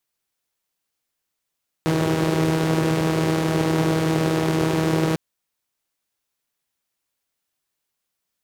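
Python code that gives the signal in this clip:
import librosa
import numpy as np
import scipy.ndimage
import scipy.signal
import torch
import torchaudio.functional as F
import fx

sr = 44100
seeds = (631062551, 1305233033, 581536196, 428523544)

y = fx.engine_four(sr, seeds[0], length_s=3.3, rpm=4800, resonances_hz=(160.0, 340.0))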